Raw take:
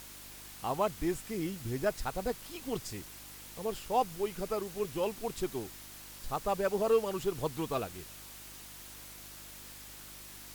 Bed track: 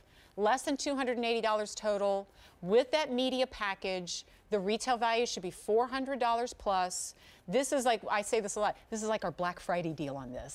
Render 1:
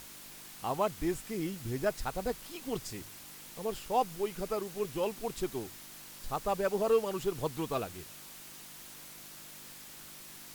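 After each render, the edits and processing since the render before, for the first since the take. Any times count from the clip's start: de-hum 50 Hz, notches 2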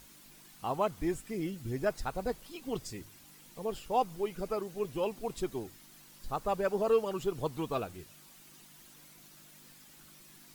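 denoiser 9 dB, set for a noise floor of -50 dBFS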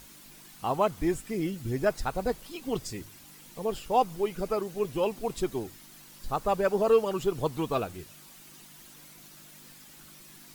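gain +5 dB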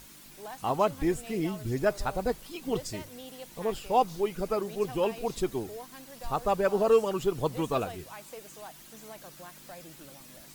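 add bed track -14.5 dB

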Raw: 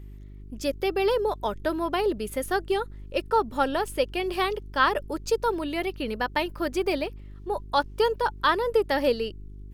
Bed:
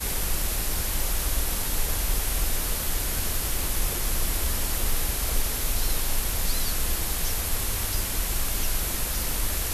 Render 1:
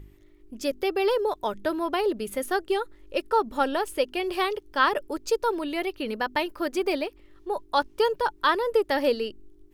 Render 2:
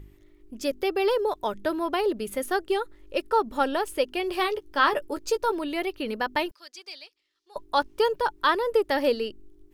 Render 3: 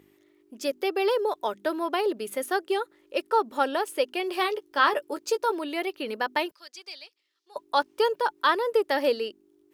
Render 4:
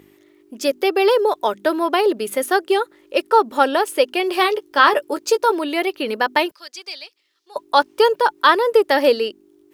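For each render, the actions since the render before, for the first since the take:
de-hum 50 Hz, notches 5
4.38–5.52 doubler 14 ms -8.5 dB; 6.51–7.56 band-pass 5000 Hz, Q 2.1
HPF 290 Hz 12 dB/oct
gain +9 dB; limiter -1 dBFS, peak gain reduction 1.5 dB

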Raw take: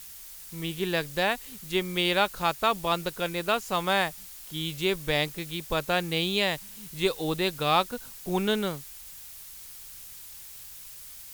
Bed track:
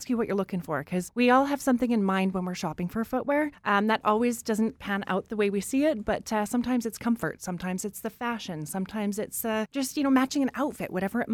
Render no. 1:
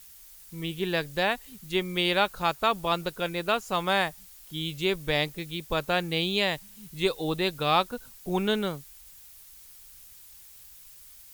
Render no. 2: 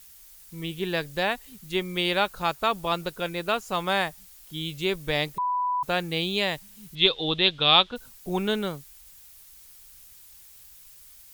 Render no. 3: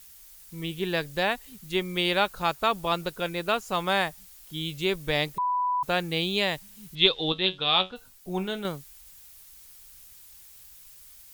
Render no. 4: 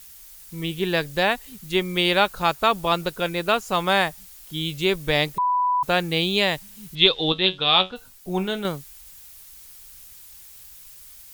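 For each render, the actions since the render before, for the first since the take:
denoiser 7 dB, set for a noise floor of -45 dBFS
5.38–5.83 bleep 992 Hz -23 dBFS; 6.95–7.96 synth low-pass 3400 Hz, resonance Q 6
7.32–8.65 resonator 93 Hz, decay 0.19 s, mix 70%
gain +5 dB; limiter -2 dBFS, peak gain reduction 2 dB

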